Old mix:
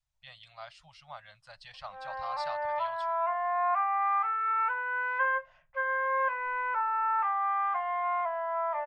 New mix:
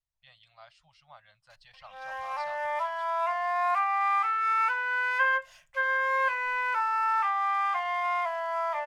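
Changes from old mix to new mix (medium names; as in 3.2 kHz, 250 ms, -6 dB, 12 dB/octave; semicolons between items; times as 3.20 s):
speech -7.0 dB; background: remove low-pass 1.4 kHz 12 dB/octave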